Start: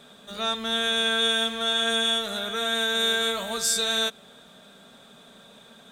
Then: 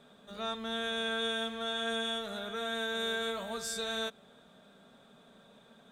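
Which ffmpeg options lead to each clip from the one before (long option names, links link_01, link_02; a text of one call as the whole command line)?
ffmpeg -i in.wav -af "highshelf=frequency=2300:gain=-9.5,volume=-6dB" out.wav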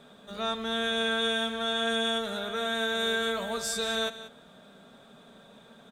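ffmpeg -i in.wav -af "aecho=1:1:185:0.2,volume=5.5dB" out.wav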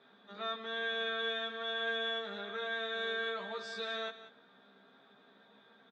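ffmpeg -i in.wav -filter_complex "[0:a]highpass=270,equalizer=frequency=580:width_type=q:width=4:gain=-8,equalizer=frequency=1800:width_type=q:width=4:gain=4,equalizer=frequency=2900:width_type=q:width=4:gain=-5,lowpass=frequency=4300:width=0.5412,lowpass=frequency=4300:width=1.3066,asplit=2[link_01][link_02];[link_02]adelay=15,volume=-2dB[link_03];[link_01][link_03]amix=inputs=2:normalize=0,volume=-8.5dB" out.wav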